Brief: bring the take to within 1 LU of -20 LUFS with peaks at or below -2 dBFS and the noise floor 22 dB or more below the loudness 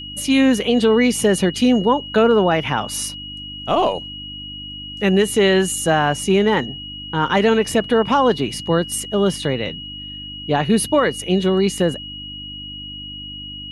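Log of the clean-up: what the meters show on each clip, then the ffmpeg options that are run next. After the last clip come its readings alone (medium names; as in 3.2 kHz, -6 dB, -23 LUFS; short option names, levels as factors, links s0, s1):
hum 50 Hz; highest harmonic 300 Hz; hum level -37 dBFS; steady tone 2.9 kHz; tone level -31 dBFS; loudness -18.0 LUFS; peak level -5.5 dBFS; loudness target -20.0 LUFS
-> -af "bandreject=f=50:t=h:w=4,bandreject=f=100:t=h:w=4,bandreject=f=150:t=h:w=4,bandreject=f=200:t=h:w=4,bandreject=f=250:t=h:w=4,bandreject=f=300:t=h:w=4"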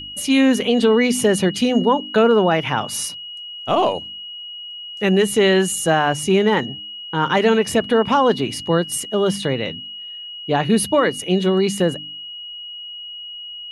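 hum not found; steady tone 2.9 kHz; tone level -31 dBFS
-> -af "bandreject=f=2900:w=30"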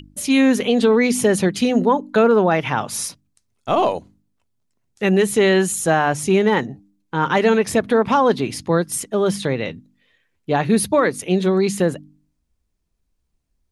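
steady tone not found; loudness -18.5 LUFS; peak level -5.0 dBFS; loudness target -20.0 LUFS
-> -af "volume=0.841"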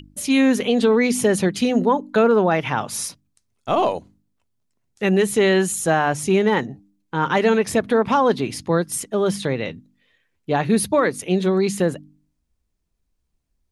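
loudness -20.0 LUFS; peak level -6.5 dBFS; noise floor -72 dBFS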